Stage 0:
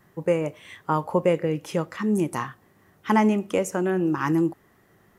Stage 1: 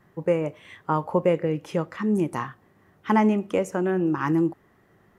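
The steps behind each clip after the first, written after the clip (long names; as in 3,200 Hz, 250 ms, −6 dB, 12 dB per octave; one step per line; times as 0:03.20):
high-shelf EQ 4,400 Hz −10 dB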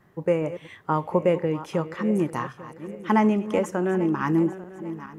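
feedback delay that plays each chunk backwards 422 ms, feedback 60%, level −14 dB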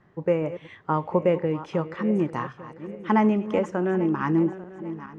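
high-frequency loss of the air 120 metres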